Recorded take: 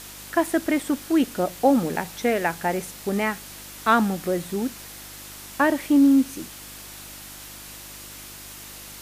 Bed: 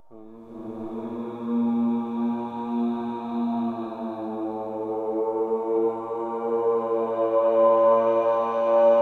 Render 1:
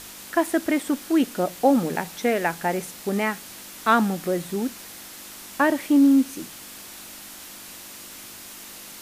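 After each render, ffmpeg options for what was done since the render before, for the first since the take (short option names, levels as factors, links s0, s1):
-af "bandreject=f=50:t=h:w=4,bandreject=f=100:t=h:w=4,bandreject=f=150:t=h:w=4"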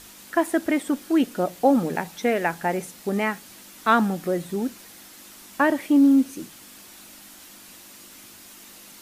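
-af "afftdn=nr=6:nf=-41"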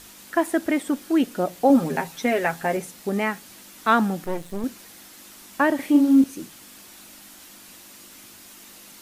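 -filter_complex "[0:a]asettb=1/sr,asplit=3[s0][s1][s2];[s0]atrim=end=1.694[s3];[s1]atrim=start=1.69:end=2.77,asetpts=PTS-STARTPTS,afade=t=in:d=0.004:c=qsin,afade=t=out:st=1.076:d=0.004:c=qsin,aecho=1:1:7.5:0.65,atrim=end_sample=47628[s4];[s2]atrim=start=2.766[s5];[s3][s4]acrossfade=d=0.004:c1=hsin:c2=qsin[s6];[s6][s5]acrossfade=d=0.004:c1=qsin:c2=hsin,asettb=1/sr,asplit=3[s7][s8][s9];[s7]atrim=end=4.244[s10];[s8]atrim=start=4.24:end=4.64,asetpts=PTS-STARTPTS,afade=t=in:d=0.004:c=qsin,afade=t=out:st=0.396:d=0.004:c=qsin,aeval=exprs='max(val(0),0)':c=same[s11];[s9]atrim=start=4.636[s12];[s10][s11]acrossfade=d=0.004:c1=hsin:c2=qsin[s13];[s13][s12]acrossfade=d=0.004:c1=qsin:c2=hsin,asettb=1/sr,asplit=3[s14][s15][s16];[s14]atrim=end=5.754[s17];[s15]atrim=start=5.75:end=6.24,asetpts=PTS-STARTPTS,afade=t=in:d=0.004:c=qsin,afade=t=out:st=0.486:d=0.004:c=qsin,asplit=2[s18][s19];[s19]adelay=41,volume=0.596[s20];[s18][s20]amix=inputs=2:normalize=0,atrim=end_sample=21609[s21];[s16]atrim=start=6.236[s22];[s17][s21]acrossfade=d=0.004:c1=hsin:c2=qsin[s23];[s23][s22]acrossfade=d=0.004:c1=qsin:c2=hsin"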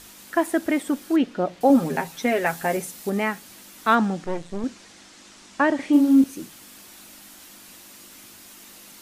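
-filter_complex "[0:a]asettb=1/sr,asplit=3[s0][s1][s2];[s0]atrim=end=1.164[s3];[s1]atrim=start=1.16:end=1.61,asetpts=PTS-STARTPTS,afade=t=in:d=0.004:c=qsin,afade=t=out:st=0.446:d=0.004:c=qsin,lowpass=4200[s4];[s2]atrim=start=1.606[s5];[s3][s4]acrossfade=d=0.004:c1=hsin:c2=qsin[s6];[s6][s5]acrossfade=d=0.004:c1=qsin:c2=hsin,asettb=1/sr,asplit=3[s7][s8][s9];[s7]atrim=end=2.464[s10];[s8]atrim=start=2.46:end=3.1,asetpts=PTS-STARTPTS,afade=t=in:d=0.004:c=qsin,afade=t=out:st=0.636:d=0.004:c=qsin,highshelf=f=5700:g=6.5[s11];[s9]atrim=start=3.096[s12];[s10][s11]acrossfade=d=0.004:c1=hsin:c2=qsin[s13];[s13][s12]acrossfade=d=0.004:c1=qsin:c2=hsin,asettb=1/sr,asplit=3[s14][s15][s16];[s14]atrim=end=3.954[s17];[s15]atrim=start=3.95:end=5.93,asetpts=PTS-STARTPTS,afade=t=in:d=0.004:c=qsin,afade=t=out:st=1.976:d=0.004:c=qsin,lowpass=f=7800:w=0.5412,lowpass=f=7800:w=1.3066[s18];[s16]atrim=start=5.926[s19];[s17][s18]acrossfade=d=0.004:c1=hsin:c2=qsin[s20];[s20][s19]acrossfade=d=0.004:c1=qsin:c2=hsin"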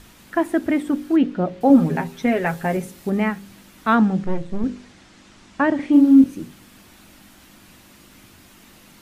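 -af "bass=f=250:g=11,treble=f=4000:g=-8,bandreject=f=49.58:t=h:w=4,bandreject=f=99.16:t=h:w=4,bandreject=f=148.74:t=h:w=4,bandreject=f=198.32:t=h:w=4,bandreject=f=247.9:t=h:w=4,bandreject=f=297.48:t=h:w=4,bandreject=f=347.06:t=h:w=4,bandreject=f=396.64:t=h:w=4,bandreject=f=446.22:t=h:w=4,bandreject=f=495.8:t=h:w=4,bandreject=f=545.38:t=h:w=4"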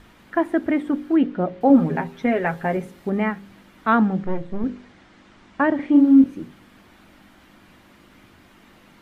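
-af "bass=f=250:g=-3,treble=f=4000:g=-14,bandreject=f=2600:w=23"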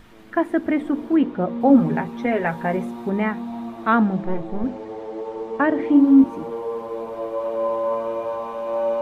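-filter_complex "[1:a]volume=0.562[s0];[0:a][s0]amix=inputs=2:normalize=0"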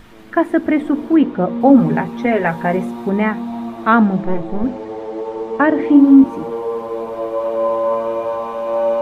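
-af "volume=1.88,alimiter=limit=0.891:level=0:latency=1"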